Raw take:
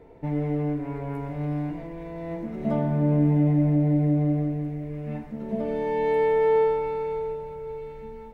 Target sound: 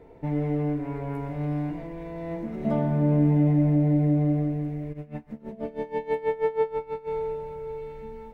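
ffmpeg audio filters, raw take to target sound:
-filter_complex "[0:a]asplit=3[a][b][c];[a]afade=t=out:st=4.92:d=0.02[d];[b]aeval=exprs='val(0)*pow(10,-20*(0.5-0.5*cos(2*PI*6.2*n/s))/20)':c=same,afade=t=in:st=4.92:d=0.02,afade=t=out:st=7.07:d=0.02[e];[c]afade=t=in:st=7.07:d=0.02[f];[d][e][f]amix=inputs=3:normalize=0"

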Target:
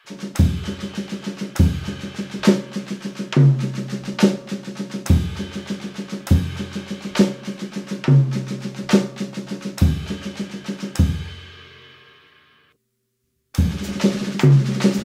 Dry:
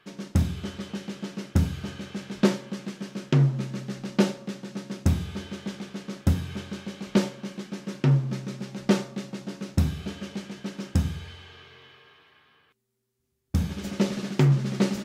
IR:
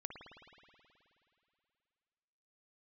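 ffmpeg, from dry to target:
-filter_complex "[0:a]asettb=1/sr,asplit=3[a][b][c];[a]atrim=end=11.304[d];[b]atrim=start=11.3:end=13.55,asetpts=PTS-STARTPTS,afade=t=in:d=0.004:c=qsin,afade=t=out:st=2.246:d=0.004:c=qsin,equalizer=f=810:w=4.8:g=-11[e];[c]atrim=start=13.546[f];[d][e]acrossfade=d=0.004:c1=hsin:c2=qsin[g];[g][f]acrossfade=d=0.004:c1=qsin:c2=hsin,acrossover=split=680[h][i];[h]adelay=40[j];[j][i]amix=inputs=2:normalize=0,volume=7dB"

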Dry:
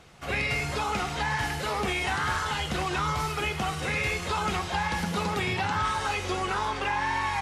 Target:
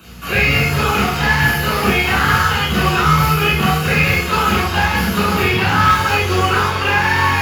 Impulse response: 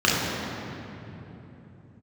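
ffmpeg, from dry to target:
-filter_complex "[0:a]acrossover=split=2600[a][b];[b]acompressor=threshold=-45dB:ratio=4:attack=1:release=60[c];[a][c]amix=inputs=2:normalize=0,highshelf=f=4.3k:g=12,bandreject=f=86.1:t=h:w=4,bandreject=f=172.2:t=h:w=4,bandreject=f=258.3:t=h:w=4,bandreject=f=344.4:t=h:w=4,bandreject=f=430.5:t=h:w=4,bandreject=f=516.6:t=h:w=4,bandreject=f=602.7:t=h:w=4,bandreject=f=688.8:t=h:w=4,bandreject=f=774.9:t=h:w=4,bandreject=f=861:t=h:w=4,bandreject=f=947.1:t=h:w=4,bandreject=f=1.0332k:t=h:w=4,bandreject=f=1.1193k:t=h:w=4,bandreject=f=1.2054k:t=h:w=4,asplit=2[d][e];[e]acrusher=bits=3:mix=0:aa=0.5,volume=-7.5dB[f];[d][f]amix=inputs=2:normalize=0,aeval=exprs='val(0)+0.00398*(sin(2*PI*60*n/s)+sin(2*PI*2*60*n/s)/2+sin(2*PI*3*60*n/s)/3+sin(2*PI*4*60*n/s)/4+sin(2*PI*5*60*n/s)/5)':c=same,acrossover=split=130[g][h];[h]aexciter=amount=14.7:drive=3.2:freq=11k[i];[g][i]amix=inputs=2:normalize=0[j];[1:a]atrim=start_sample=2205,atrim=end_sample=4410[k];[j][k]afir=irnorm=-1:irlink=0,volume=-6.5dB"

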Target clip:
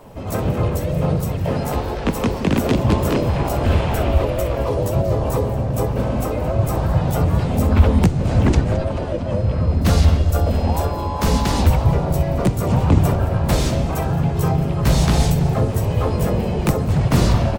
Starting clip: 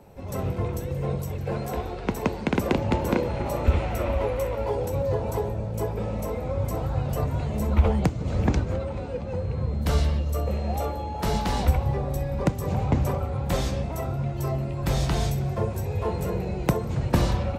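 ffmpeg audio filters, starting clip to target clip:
-filter_complex "[0:a]apsyclip=15.5dB,asplit=4[a][b][c][d];[b]asetrate=29433,aresample=44100,atempo=1.49831,volume=-10dB[e];[c]asetrate=52444,aresample=44100,atempo=0.840896,volume=-1dB[f];[d]asetrate=55563,aresample=44100,atempo=0.793701,volume=-9dB[g];[a][e][f][g]amix=inputs=4:normalize=0,acrossover=split=360|3000[h][i][j];[i]acompressor=threshold=-13dB:ratio=5[k];[h][k][j]amix=inputs=3:normalize=0,asplit=2[l][m];[m]asplit=5[n][o][p][q][r];[n]adelay=218,afreqshift=-55,volume=-18dB[s];[o]adelay=436,afreqshift=-110,volume=-23.4dB[t];[p]adelay=654,afreqshift=-165,volume=-28.7dB[u];[q]adelay=872,afreqshift=-220,volume=-34.1dB[v];[r]adelay=1090,afreqshift=-275,volume=-39.4dB[w];[s][t][u][v][w]amix=inputs=5:normalize=0[x];[l][x]amix=inputs=2:normalize=0,volume=-9.5dB"

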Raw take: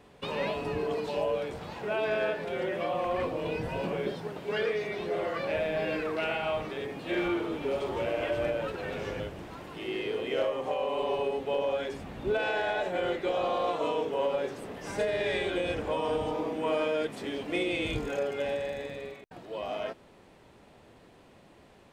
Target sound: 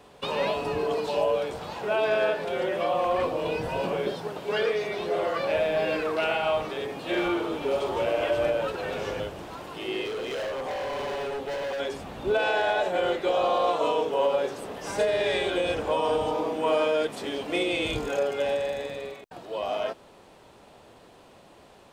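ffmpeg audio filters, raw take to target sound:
-filter_complex "[0:a]equalizer=f=2k:t=o:w=0.77:g=-5.5,acrossover=split=450[a][b];[b]acontrast=78[c];[a][c]amix=inputs=2:normalize=0,asettb=1/sr,asplit=3[d][e][f];[d]atrim=end=10.054[g];[e]atrim=start=10.05:end=11.8,asetpts=PTS-STARTPTS,afade=t=in:d=0.004:c=qsin,afade=t=out:st=1.746:d=0.004:c=qsin,asoftclip=type=hard:threshold=-29.5dB[h];[f]atrim=start=11.796[i];[g][h]acrossfade=d=0.004:c1=hsin:c2=qsin[j];[j][i]acrossfade=d=0.004:c1=qsin:c2=hsin"

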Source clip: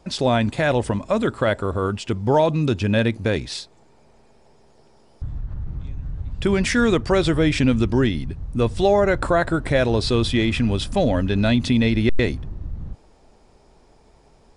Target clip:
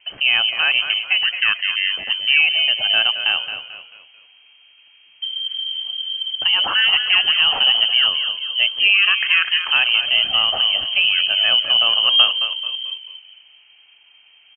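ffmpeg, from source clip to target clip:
-filter_complex "[0:a]asplit=5[a][b][c][d][e];[b]adelay=220,afreqshift=49,volume=-10dB[f];[c]adelay=440,afreqshift=98,volume=-18.4dB[g];[d]adelay=660,afreqshift=147,volume=-26.8dB[h];[e]adelay=880,afreqshift=196,volume=-35.2dB[i];[a][f][g][h][i]amix=inputs=5:normalize=0,lowpass=f=2.7k:t=q:w=0.5098,lowpass=f=2.7k:t=q:w=0.6013,lowpass=f=2.7k:t=q:w=0.9,lowpass=f=2.7k:t=q:w=2.563,afreqshift=-3200,volume=1.5dB"

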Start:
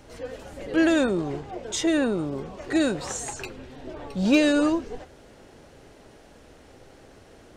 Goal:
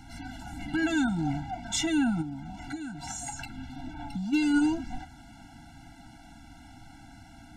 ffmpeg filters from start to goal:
-filter_complex "[0:a]alimiter=limit=-17dB:level=0:latency=1:release=246,asplit=3[a][b][c];[a]afade=t=out:st=2.21:d=0.02[d];[b]acompressor=threshold=-34dB:ratio=12,afade=t=in:st=2.21:d=0.02,afade=t=out:st=4.32:d=0.02[e];[c]afade=t=in:st=4.32:d=0.02[f];[d][e][f]amix=inputs=3:normalize=0,afftfilt=real='re*eq(mod(floor(b*sr/1024/330),2),0)':imag='im*eq(mod(floor(b*sr/1024/330),2),0)':win_size=1024:overlap=0.75,volume=3.5dB"

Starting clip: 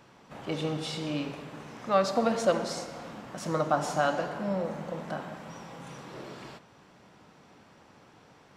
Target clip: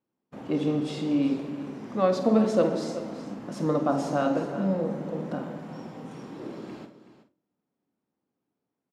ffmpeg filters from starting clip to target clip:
-filter_complex "[0:a]agate=range=-31dB:threshold=-50dB:ratio=16:detection=peak,equalizer=f=290:w=0.73:g=15,asplit=2[a][b];[b]adelay=49,volume=-12.5dB[c];[a][c]amix=inputs=2:normalize=0,bandreject=f=46.88:t=h:w=4,bandreject=f=93.76:t=h:w=4,bandreject=f=140.64:t=h:w=4,bandreject=f=187.52:t=h:w=4,bandreject=f=234.4:t=h:w=4,bandreject=f=281.28:t=h:w=4,bandreject=f=328.16:t=h:w=4,bandreject=f=375.04:t=h:w=4,bandreject=f=421.92:t=h:w=4,bandreject=f=468.8:t=h:w=4,bandreject=f=515.68:t=h:w=4,bandreject=f=562.56:t=h:w=4,bandreject=f=609.44:t=h:w=4,bandreject=f=656.32:t=h:w=4,bandreject=f=703.2:t=h:w=4,bandreject=f=750.08:t=h:w=4,asplit=2[d][e];[e]aecho=0:1:361:0.211[f];[d][f]amix=inputs=2:normalize=0,asetrate=42336,aresample=44100,volume=-5dB"

